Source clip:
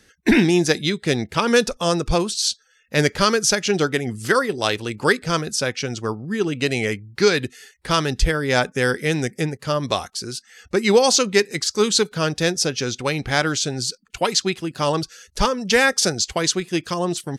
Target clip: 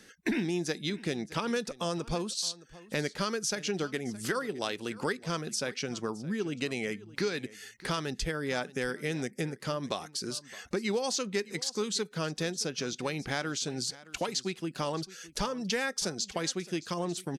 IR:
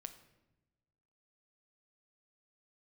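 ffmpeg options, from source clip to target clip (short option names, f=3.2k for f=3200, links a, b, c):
-af "lowshelf=f=130:t=q:w=1.5:g=-8,acompressor=threshold=-34dB:ratio=3,aecho=1:1:617:0.112"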